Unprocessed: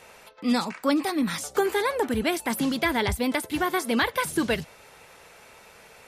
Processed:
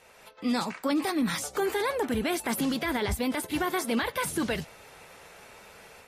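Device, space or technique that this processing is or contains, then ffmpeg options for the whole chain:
low-bitrate web radio: -af "dynaudnorm=f=150:g=3:m=2,alimiter=limit=0.224:level=0:latency=1:release=17,volume=0.447" -ar 44100 -c:a aac -b:a 48k

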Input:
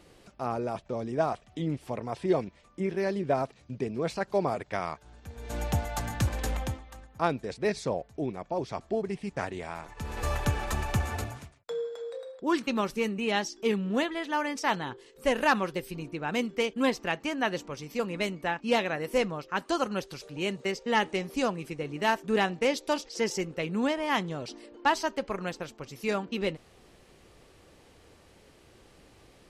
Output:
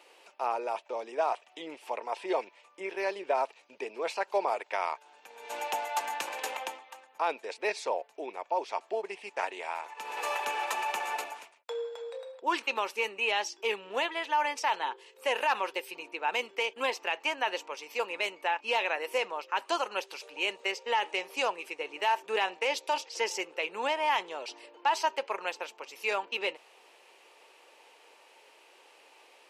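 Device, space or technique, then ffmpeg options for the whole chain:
laptop speaker: -af "highpass=f=430:w=0.5412,highpass=f=430:w=1.3066,equalizer=f=910:t=o:w=0.27:g=10,equalizer=f=2600:t=o:w=0.53:g=9,alimiter=limit=0.141:level=0:latency=1:release=35,volume=0.891"

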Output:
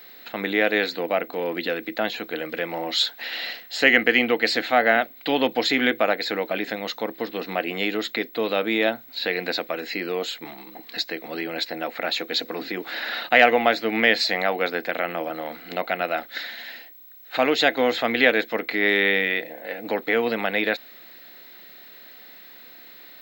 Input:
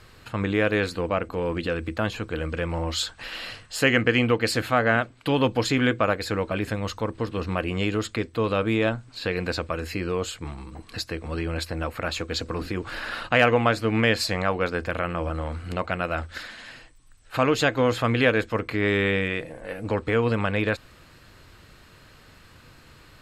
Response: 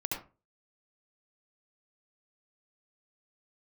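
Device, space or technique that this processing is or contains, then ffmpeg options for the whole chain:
old television with a line whistle: -af "highpass=f=220:w=0.5412,highpass=f=220:w=1.3066,equalizer=f=730:t=q:w=4:g=8,equalizer=f=1100:t=q:w=4:g=-7,equalizer=f=2000:t=q:w=4:g=9,equalizer=f=3800:t=q:w=4:g=10,lowpass=f=6500:w=0.5412,lowpass=f=6500:w=1.3066,aeval=exprs='val(0)+0.00631*sin(2*PI*15734*n/s)':c=same"

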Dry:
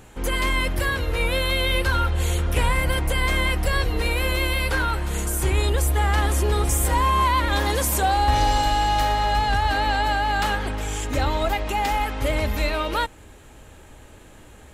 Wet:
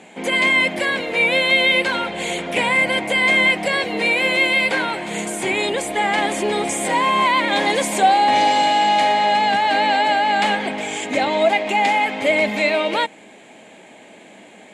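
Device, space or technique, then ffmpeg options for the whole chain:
television speaker: -af "highpass=f=200:w=0.5412,highpass=f=200:w=1.3066,equalizer=f=200:t=q:w=4:g=8,equalizer=f=680:t=q:w=4:g=9,equalizer=f=1300:t=q:w=4:g=-8,equalizer=f=2200:t=q:w=4:g=10,equalizer=f=3300:t=q:w=4:g=3,equalizer=f=5600:t=q:w=4:g=-6,lowpass=f=8700:w=0.5412,lowpass=f=8700:w=1.3066,volume=1.5"

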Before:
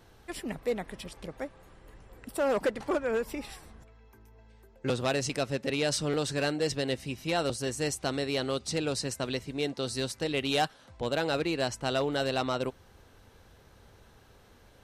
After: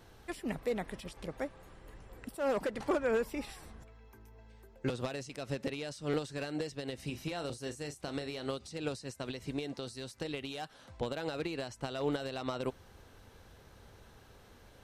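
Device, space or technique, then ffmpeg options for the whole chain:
de-esser from a sidechain: -filter_complex "[0:a]asplit=2[s0][s1];[s1]highpass=5400,apad=whole_len=654024[s2];[s0][s2]sidechaincompress=threshold=0.00316:ratio=5:attack=2.2:release=96,asettb=1/sr,asplit=3[s3][s4][s5];[s3]atrim=end=7.044[s6];[s4]atrim=start=7.04:end=8.47,asetpts=PTS-STARTPTS,afade=t=in:d=0.004:c=qsin,afade=t=out:st=1.426:d=0.004:c=qsin,asplit=2[s7][s8];[s8]adelay=34,volume=0.266[s9];[s7][s9]amix=inputs=2:normalize=0,atrim=end_sample=63063[s10];[s5]atrim=start=8.466[s11];[s6][s10]acrossfade=d=0.004:c1=hsin:c2=qsin[s12];[s12][s11]acrossfade=d=0.004:c1=qsin:c2=hsin"

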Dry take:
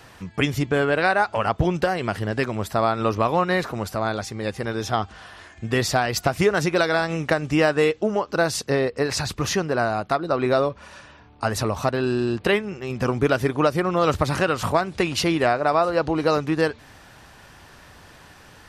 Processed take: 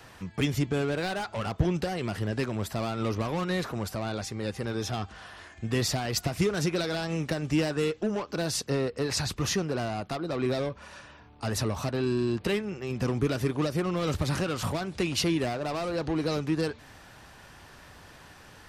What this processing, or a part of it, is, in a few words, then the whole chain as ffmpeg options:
one-band saturation: -filter_complex "[0:a]acrossover=split=350|3100[s0][s1][s2];[s1]asoftclip=type=tanh:threshold=0.0335[s3];[s0][s3][s2]amix=inputs=3:normalize=0,volume=0.708"

